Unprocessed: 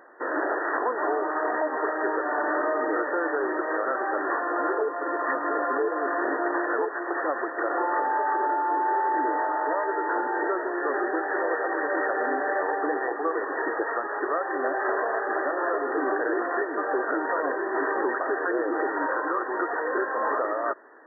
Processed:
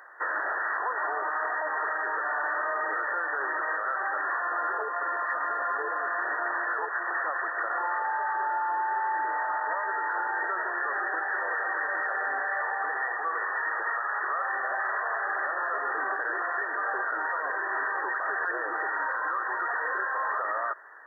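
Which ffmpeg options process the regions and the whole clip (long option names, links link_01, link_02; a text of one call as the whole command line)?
ffmpeg -i in.wav -filter_complex "[0:a]asettb=1/sr,asplit=3[link_01][link_02][link_03];[link_01]atrim=end=12.484[link_04];[link_02]atrim=start=12.48:end=15.25,asetpts=PTS-STARTPTS,afade=type=in:duration=0.004:curve=qsin,afade=type=out:start_time=2.766:duration=0.004:curve=qsin,highpass=frequency=490:poles=1,bandreject=frequency=1600:width=29,aecho=1:1:74:0.398,atrim=end_sample=122157[link_05];[link_03]atrim=start=15.246[link_06];[link_04][link_05]acrossfade=duration=0.004:curve1=hsin:curve2=qsin[link_07];[link_07][link_06]acrossfade=duration=0.004:curve1=qsin:curve2=hsin,highpass=1200,acontrast=69,alimiter=limit=-21.5dB:level=0:latency=1:release=34" out.wav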